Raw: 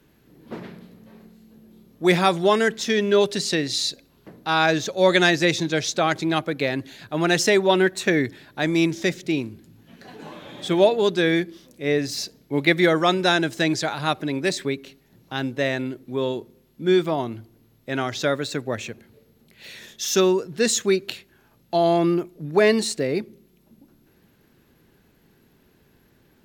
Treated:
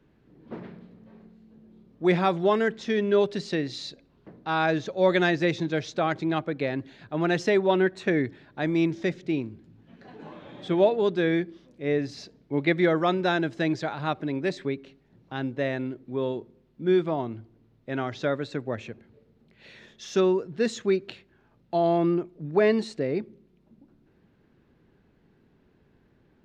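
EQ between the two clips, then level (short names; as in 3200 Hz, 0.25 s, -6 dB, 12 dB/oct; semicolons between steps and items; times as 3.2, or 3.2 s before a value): tape spacing loss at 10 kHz 24 dB; -2.5 dB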